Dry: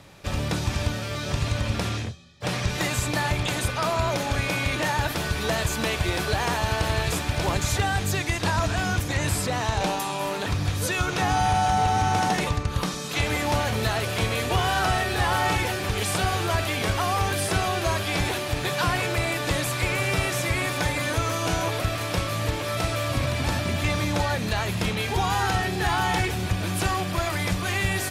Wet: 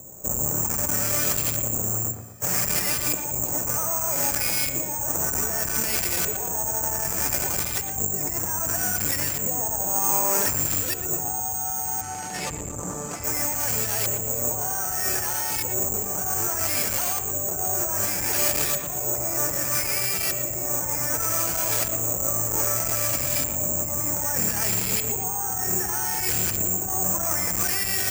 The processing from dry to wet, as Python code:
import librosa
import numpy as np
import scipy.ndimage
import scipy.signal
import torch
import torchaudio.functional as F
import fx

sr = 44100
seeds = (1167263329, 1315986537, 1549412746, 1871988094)

p1 = fx.low_shelf(x, sr, hz=320.0, db=-5.0)
p2 = fx.notch(p1, sr, hz=1100.0, q=14.0)
p3 = fx.over_compress(p2, sr, threshold_db=-31.0, ratio=-1.0)
p4 = fx.filter_lfo_lowpass(p3, sr, shape='saw_up', hz=0.64, low_hz=520.0, high_hz=4100.0, q=0.99)
p5 = (np.kron(scipy.signal.resample_poly(p4, 1, 6), np.eye(6)[0]) * 6)[:len(p4)]
p6 = fx.air_absorb(p5, sr, metres=65.0, at=(12.01, 13.24))
p7 = p6 + fx.echo_wet_lowpass(p6, sr, ms=117, feedback_pct=43, hz=3000.0, wet_db=-8.0, dry=0)
y = fx.transformer_sat(p7, sr, knee_hz=2600.0)